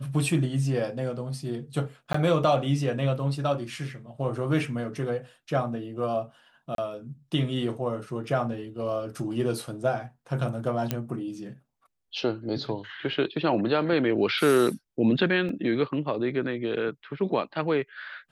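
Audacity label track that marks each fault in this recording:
2.130000	2.140000	dropout 14 ms
6.750000	6.780000	dropout 32 ms
10.910000	10.910000	pop -11 dBFS
15.490000	15.490000	dropout 2.3 ms

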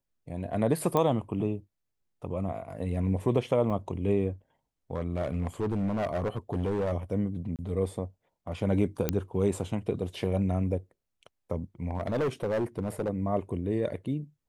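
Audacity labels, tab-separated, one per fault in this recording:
0.970000	0.970000	pop -14 dBFS
3.700000	3.710000	dropout 5.8 ms
4.930000	6.930000	clipped -25 dBFS
7.560000	7.590000	dropout 28 ms
9.090000	9.090000	pop -11 dBFS
11.850000	13.100000	clipped -24.5 dBFS

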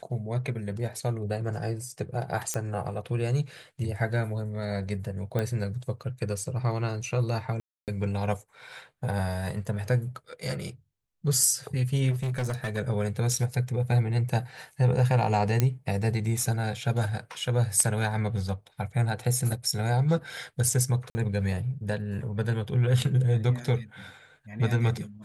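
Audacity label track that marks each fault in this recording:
2.540000	2.540000	pop -14 dBFS
5.390000	5.390000	pop -16 dBFS
7.600000	7.880000	dropout 278 ms
12.100000	12.780000	clipped -26 dBFS
15.600000	15.600000	pop -9 dBFS
21.100000	21.150000	dropout 50 ms

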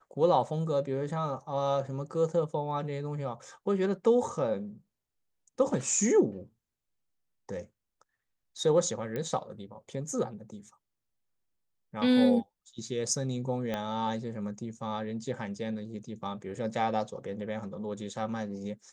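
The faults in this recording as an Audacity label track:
9.160000	9.160000	pop -22 dBFS
13.740000	13.740000	pop -19 dBFS

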